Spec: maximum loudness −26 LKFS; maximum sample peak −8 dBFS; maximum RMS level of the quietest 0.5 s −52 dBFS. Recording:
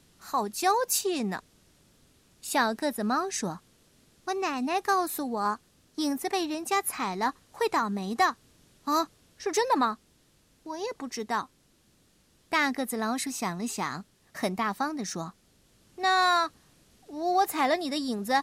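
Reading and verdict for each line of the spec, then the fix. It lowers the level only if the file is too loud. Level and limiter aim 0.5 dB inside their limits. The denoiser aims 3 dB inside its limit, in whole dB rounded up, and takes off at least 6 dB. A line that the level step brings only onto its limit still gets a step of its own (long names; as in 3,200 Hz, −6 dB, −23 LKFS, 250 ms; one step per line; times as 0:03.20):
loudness −29.0 LKFS: in spec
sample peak −11.5 dBFS: in spec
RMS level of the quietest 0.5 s −65 dBFS: in spec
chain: no processing needed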